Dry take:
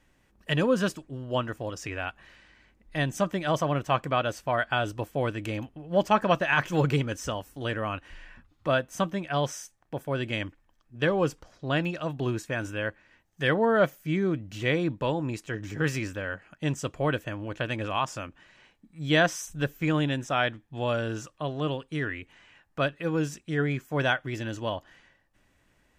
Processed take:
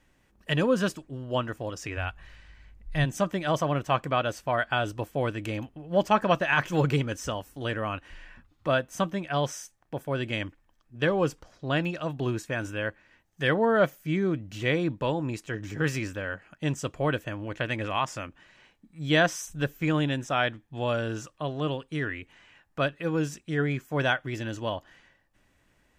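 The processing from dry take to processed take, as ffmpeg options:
-filter_complex "[0:a]asplit=3[a][b][c];[a]afade=t=out:st=1.96:d=0.02[d];[b]asubboost=boost=9.5:cutoff=100,afade=t=in:st=1.96:d=0.02,afade=t=out:st=3.04:d=0.02[e];[c]afade=t=in:st=3.04:d=0.02[f];[d][e][f]amix=inputs=3:normalize=0,asettb=1/sr,asplit=3[g][h][i];[g]atrim=end=17.474[j];[h]atrim=start=17.47:end=18.26,asetpts=PTS-STARTPTS,afade=t=in:d=0.004:c=qsin,afade=t=out:st=0.786:d=0.004:c=qsin,equalizer=f=2k:w=5.1:g=6.5[k];[i]atrim=start=18.256[l];[j][k]acrossfade=d=0.004:c1=hsin:c2=qsin[m];[m][l]acrossfade=d=0.004:c1=qsin:c2=hsin"

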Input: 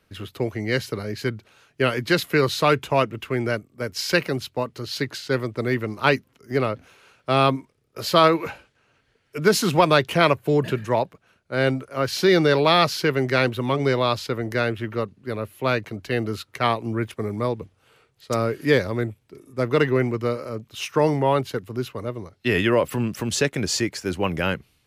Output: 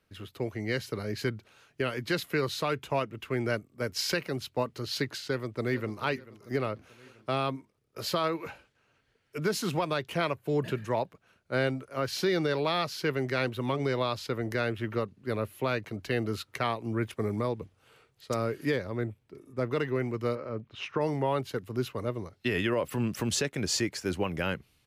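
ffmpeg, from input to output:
-filter_complex "[0:a]asplit=2[a][b];[b]afade=t=in:st=5.22:d=0.01,afade=t=out:st=6.01:d=0.01,aecho=0:1:440|880|1320|1760:0.158489|0.0792447|0.0396223|0.0198112[c];[a][c]amix=inputs=2:normalize=0,asettb=1/sr,asplit=3[d][e][f];[d]atrim=end=18.764[g];[e]atrim=start=18.76:end=19.72,asetpts=PTS-STARTPTS,afade=t=in:d=0.004:c=qsin,afade=t=out:st=0.956:d=0.004:c=qsin,highshelf=f=3.8k:g=-7.5[h];[f]atrim=start=19.716[i];[g][h]acrossfade=d=0.004:c1=hsin:c2=qsin[j];[j][i]acrossfade=d=0.004:c1=qsin:c2=hsin,asettb=1/sr,asplit=3[k][l][m];[k]atrim=end=20.354[n];[l]atrim=start=20.35:end=21.01,asetpts=PTS-STARTPTS,afade=t=in:d=0.004:c=qsin,afade=t=out:st=0.656:d=0.004:c=qsin,lowpass=2.6k[o];[m]atrim=start=21.006[p];[n][o]acrossfade=d=0.004:c1=hsin:c2=qsin[q];[q][p]acrossfade=d=0.004:c1=qsin:c2=hsin,dynaudnorm=f=100:g=17:m=11.5dB,alimiter=limit=-9.5dB:level=0:latency=1:release=489,volume=-8.5dB"

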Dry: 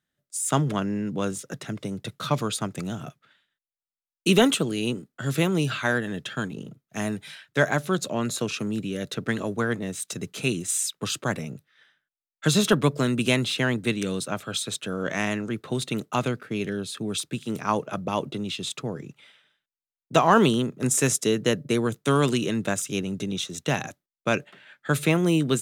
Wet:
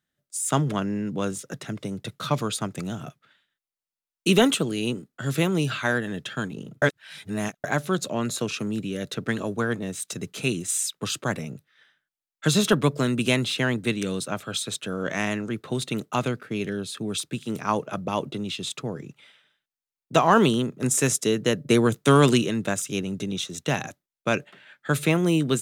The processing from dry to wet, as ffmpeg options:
-filter_complex "[0:a]asettb=1/sr,asplit=3[a][b][c];[a]atrim=end=9.324[d];[b]atrim=start=9.32:end=9.9,asetpts=PTS-STARTPTS,afade=t=in:d=0.004:c=qsin,afade=t=out:st=0.576:d=0.004:c=qsin,bandreject=f=2k:w=12[e];[c]atrim=start=9.896[f];[d][e]acrossfade=d=0.004:c1=hsin:c2=qsin[g];[g][f]acrossfade=d=0.004:c1=qsin:c2=hsin,asettb=1/sr,asplit=3[h][i][j];[h]atrim=end=21.684[k];[i]atrim=start=21.68:end=22.42,asetpts=PTS-STARTPTS,afade=t=in:d=0.004:c=qsin,afade=t=out:st=0.736:d=0.004:c=qsin,acontrast=21[l];[j]atrim=start=22.416[m];[k][l]acrossfade=d=0.004:c1=hsin:c2=qsin[n];[n][m]acrossfade=d=0.004:c1=qsin:c2=hsin,asplit=3[o][p][q];[o]atrim=end=6.822[r];[p]atrim=start=6.818:end=7.642,asetpts=PTS-STARTPTS,areverse[s];[q]atrim=start=7.638[t];[r][s]acrossfade=d=0.004:c1=hsin:c2=hsin[u];[u][t]acrossfade=d=0.004:c1=hsin:c2=hsin"

